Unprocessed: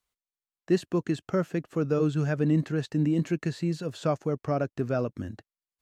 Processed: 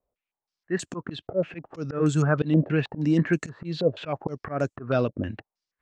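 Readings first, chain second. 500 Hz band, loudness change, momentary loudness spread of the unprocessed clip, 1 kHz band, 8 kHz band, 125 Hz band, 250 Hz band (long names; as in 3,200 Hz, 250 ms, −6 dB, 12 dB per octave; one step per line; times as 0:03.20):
+1.5 dB, +1.5 dB, 5 LU, +2.0 dB, +5.5 dB, +2.0 dB, +1.0 dB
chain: volume swells 165 ms
low-pass on a step sequencer 6.3 Hz 590–7,500 Hz
level +4.5 dB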